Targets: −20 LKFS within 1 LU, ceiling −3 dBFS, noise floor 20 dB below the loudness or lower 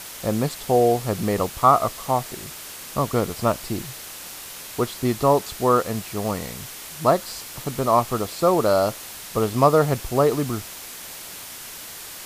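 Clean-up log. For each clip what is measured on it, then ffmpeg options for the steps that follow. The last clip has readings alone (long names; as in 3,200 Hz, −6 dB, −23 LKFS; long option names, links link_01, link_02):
background noise floor −38 dBFS; target noise floor −42 dBFS; integrated loudness −22.0 LKFS; sample peak −3.0 dBFS; target loudness −20.0 LKFS
→ -af "afftdn=noise_reduction=6:noise_floor=-38"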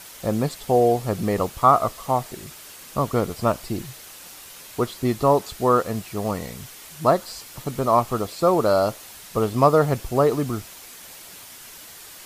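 background noise floor −43 dBFS; integrated loudness −22.0 LKFS; sample peak −3.0 dBFS; target loudness −20.0 LKFS
→ -af "volume=2dB,alimiter=limit=-3dB:level=0:latency=1"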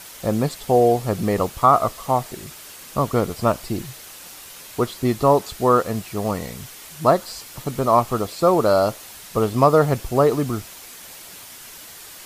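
integrated loudness −20.5 LKFS; sample peak −3.0 dBFS; background noise floor −41 dBFS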